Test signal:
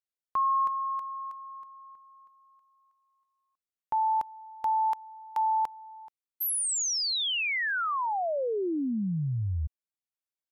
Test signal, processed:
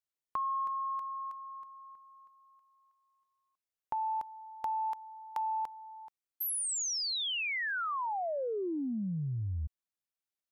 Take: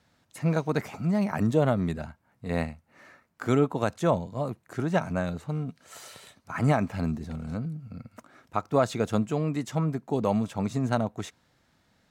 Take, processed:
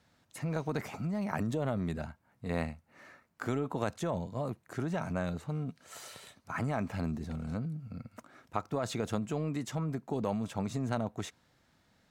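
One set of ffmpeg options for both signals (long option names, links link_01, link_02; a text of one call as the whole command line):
ffmpeg -i in.wav -af "acompressor=threshold=-32dB:ratio=12:attack=21:release=25:knee=6:detection=peak,volume=-2dB" out.wav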